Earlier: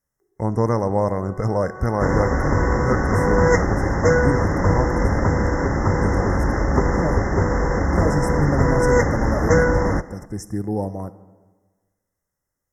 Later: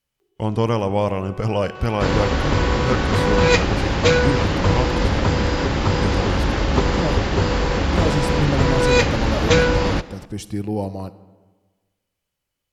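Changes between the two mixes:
second sound: add high shelf 6900 Hz +8 dB; master: remove brick-wall FIR band-stop 2100–5100 Hz

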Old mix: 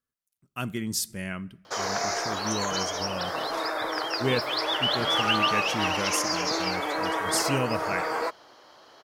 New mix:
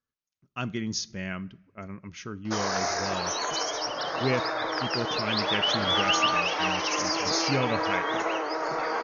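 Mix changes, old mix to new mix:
background: entry +0.80 s; master: add brick-wall FIR low-pass 6800 Hz

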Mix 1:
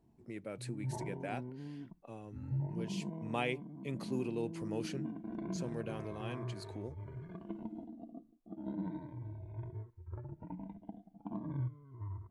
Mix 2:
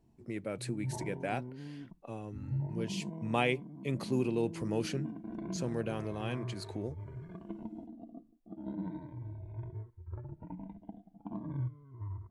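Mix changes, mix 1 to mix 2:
speech +5.5 dB; master: add low shelf 71 Hz +6 dB

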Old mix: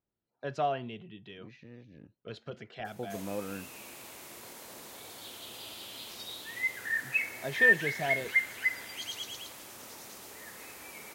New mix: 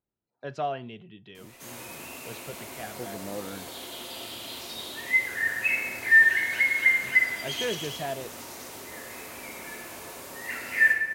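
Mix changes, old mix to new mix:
background: entry -1.50 s; reverb: on, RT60 1.4 s

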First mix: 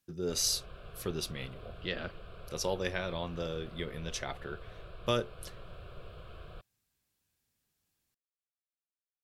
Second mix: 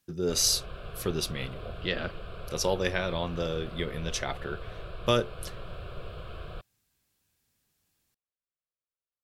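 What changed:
speech +5.5 dB; background +7.5 dB

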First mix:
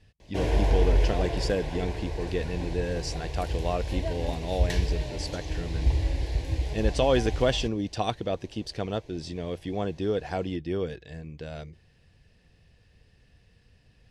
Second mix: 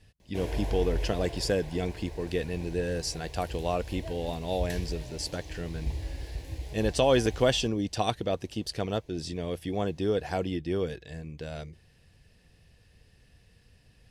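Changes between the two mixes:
background -9.0 dB; master: remove air absorption 55 m

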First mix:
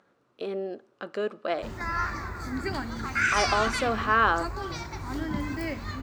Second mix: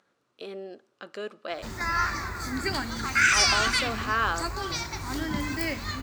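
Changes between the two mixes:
speech -7.0 dB; master: add high shelf 2200 Hz +11 dB

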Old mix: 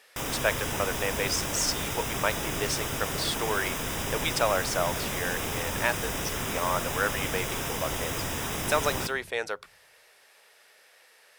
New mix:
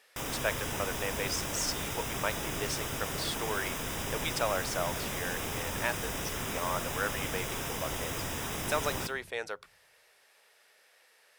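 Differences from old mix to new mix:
speech -5.5 dB; background -4.0 dB

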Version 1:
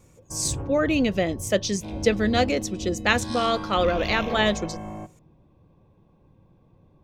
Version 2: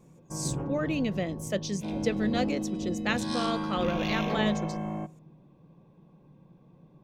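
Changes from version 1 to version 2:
speech -9.0 dB; master: add resonant low shelf 120 Hz -8 dB, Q 3

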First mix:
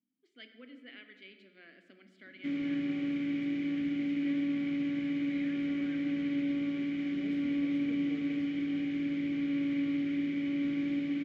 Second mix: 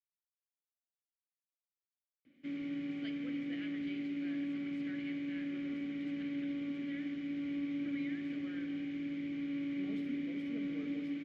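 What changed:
speech: entry +2.65 s; background -6.5 dB

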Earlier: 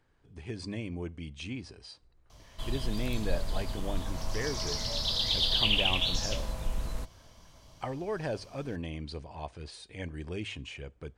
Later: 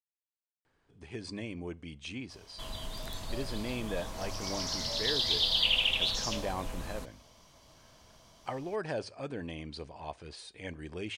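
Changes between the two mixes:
speech: entry +0.65 s; master: add low shelf 140 Hz -9.5 dB

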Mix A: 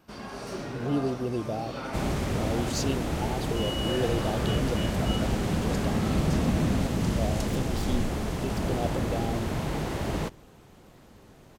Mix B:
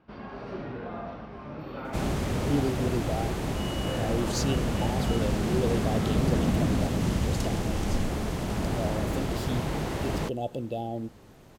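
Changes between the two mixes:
speech: entry +1.60 s; first sound: add air absorption 350 m

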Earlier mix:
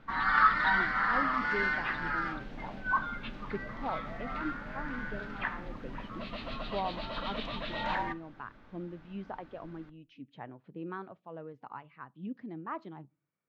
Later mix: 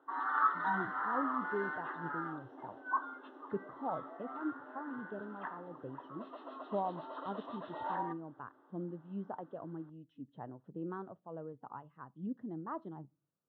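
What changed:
background: add rippled Chebyshev high-pass 260 Hz, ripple 6 dB; master: add running mean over 19 samples

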